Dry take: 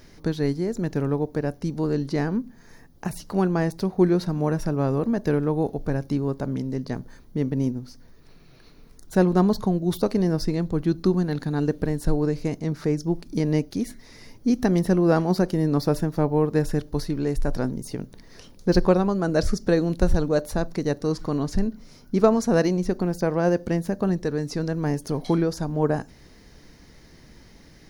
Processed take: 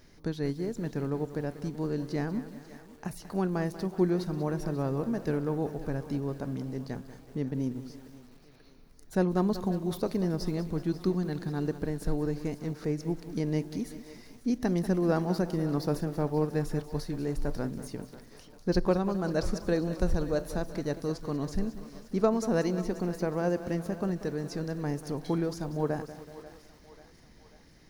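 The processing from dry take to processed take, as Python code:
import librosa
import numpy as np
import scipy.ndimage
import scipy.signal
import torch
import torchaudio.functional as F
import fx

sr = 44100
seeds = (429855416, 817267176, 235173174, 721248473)

y = fx.echo_thinned(x, sr, ms=539, feedback_pct=61, hz=410.0, wet_db=-15.5)
y = fx.echo_crushed(y, sr, ms=189, feedback_pct=55, bits=7, wet_db=-13.0)
y = F.gain(torch.from_numpy(y), -7.5).numpy()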